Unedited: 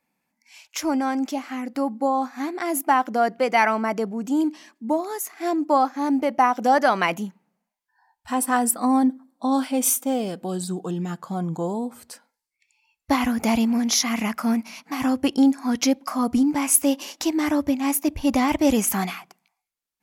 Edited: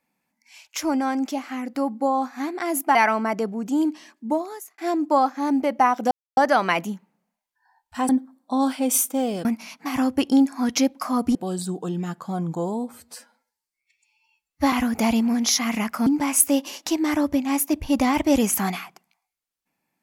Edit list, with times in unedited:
2.95–3.54 s: delete
4.90–5.37 s: fade out
6.70 s: insert silence 0.26 s
8.42–9.01 s: delete
12.02–13.17 s: stretch 1.5×
14.51–16.41 s: move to 10.37 s

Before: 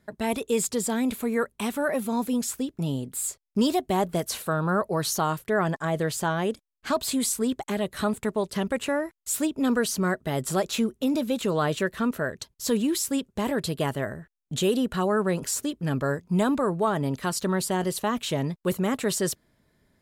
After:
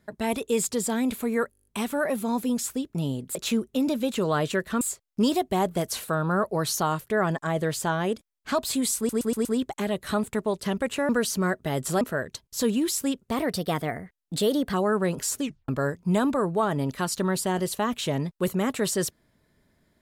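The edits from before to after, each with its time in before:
1.51 s: stutter 0.02 s, 9 plays
7.35 s: stutter 0.12 s, 5 plays
8.99–9.70 s: delete
10.62–12.08 s: move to 3.19 s
13.35–14.98 s: speed 112%
15.66 s: tape stop 0.27 s

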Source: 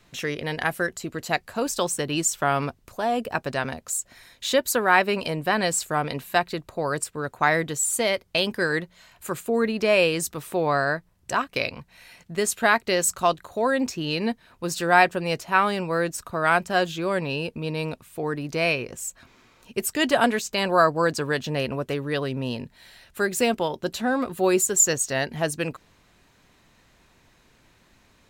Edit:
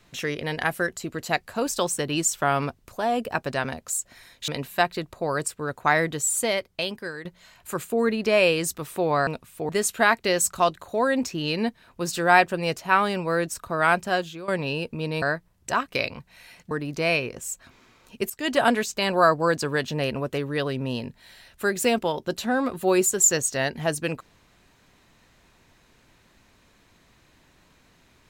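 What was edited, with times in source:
4.48–6.04 s: delete
7.91–8.81 s: fade out, to -15.5 dB
10.83–12.32 s: swap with 17.85–18.27 s
16.65–17.11 s: fade out, to -15 dB
19.86–20.18 s: fade in, from -14 dB

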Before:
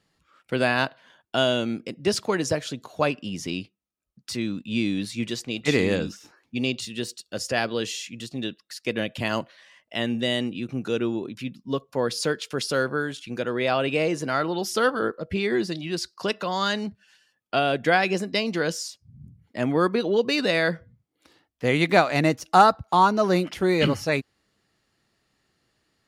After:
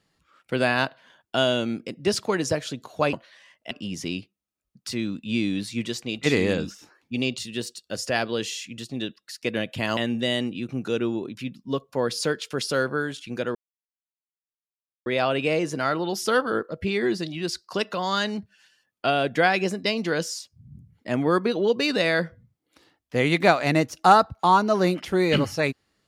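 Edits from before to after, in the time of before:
9.39–9.97 s: move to 3.13 s
13.55 s: insert silence 1.51 s

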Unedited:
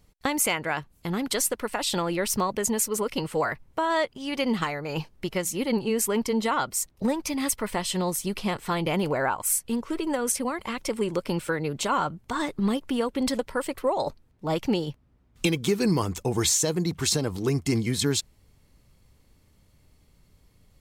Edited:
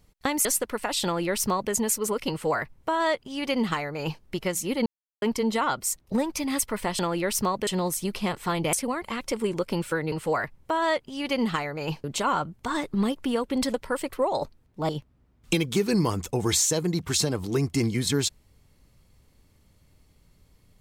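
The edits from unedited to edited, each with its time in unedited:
0.45–1.35 s: delete
1.94–2.62 s: copy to 7.89 s
3.20–5.12 s: copy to 11.69 s
5.76–6.12 s: mute
8.95–10.30 s: delete
14.54–14.81 s: delete

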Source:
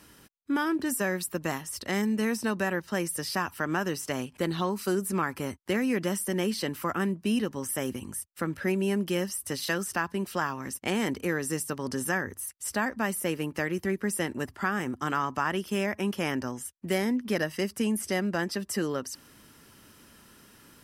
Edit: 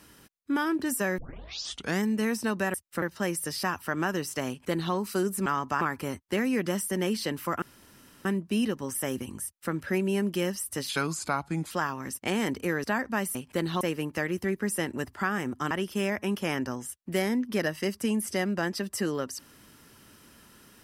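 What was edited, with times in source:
1.18 s: tape start 0.83 s
4.20–4.66 s: copy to 13.22 s
6.99 s: insert room tone 0.63 s
8.18–8.46 s: copy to 2.74 s
9.63–10.31 s: speed 83%
11.44–12.71 s: delete
15.12–15.47 s: move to 5.18 s

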